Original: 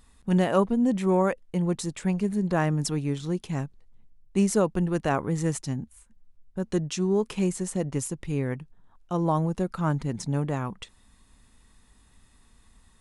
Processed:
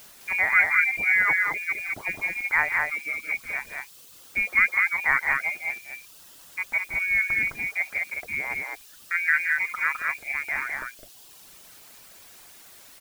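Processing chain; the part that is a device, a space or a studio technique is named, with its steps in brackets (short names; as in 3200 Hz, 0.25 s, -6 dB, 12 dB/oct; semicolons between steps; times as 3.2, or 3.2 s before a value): scrambled radio voice (BPF 390–3100 Hz; inverted band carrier 2600 Hz; white noise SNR 20 dB); 2.7–3.14 HPF 220 Hz 24 dB/oct; reverb removal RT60 1.3 s; loudspeakers at several distances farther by 58 m -10 dB, 72 m -3 dB; gain +5 dB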